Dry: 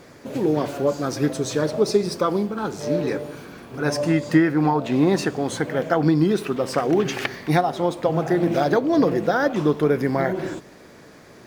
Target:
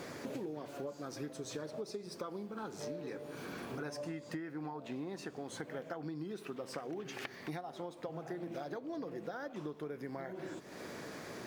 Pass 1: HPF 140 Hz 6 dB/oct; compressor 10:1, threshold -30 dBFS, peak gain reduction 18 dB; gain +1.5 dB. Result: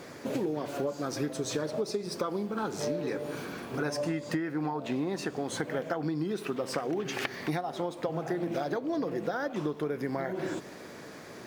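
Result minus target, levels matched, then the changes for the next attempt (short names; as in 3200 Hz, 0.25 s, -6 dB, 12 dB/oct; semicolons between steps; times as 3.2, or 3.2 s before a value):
compressor: peak gain reduction -10.5 dB
change: compressor 10:1, threshold -41.5 dBFS, peak gain reduction 28 dB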